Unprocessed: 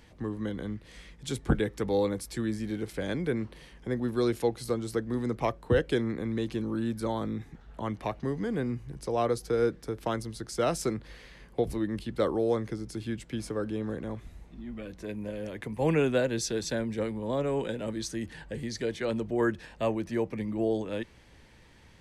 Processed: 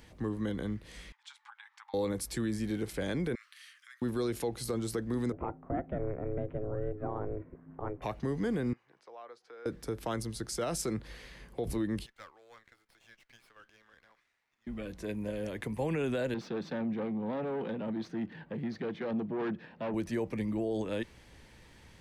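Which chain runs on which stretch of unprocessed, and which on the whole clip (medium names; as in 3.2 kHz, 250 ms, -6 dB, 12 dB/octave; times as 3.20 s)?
1.12–1.94 s: compression 4:1, threshold -34 dBFS + brick-wall FIR high-pass 790 Hz + tape spacing loss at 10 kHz 24 dB
3.35–4.02 s: steep high-pass 1.2 kHz 72 dB/octave + compression 10:1, threshold -48 dBFS
5.32–8.02 s: Gaussian low-pass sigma 5.3 samples + ring modulator 210 Hz
8.73–9.66 s: high-pass 920 Hz + compression 2:1, threshold -51 dBFS + tape spacing loss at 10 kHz 31 dB
12.06–14.67 s: ladder band-pass 2.3 kHz, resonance 20% + sliding maximum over 5 samples
16.34–19.94 s: valve stage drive 32 dB, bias 0.45 + resonant high-pass 180 Hz, resonance Q 2.2 + distance through air 330 m
whole clip: treble shelf 8.6 kHz +5 dB; peak limiter -24 dBFS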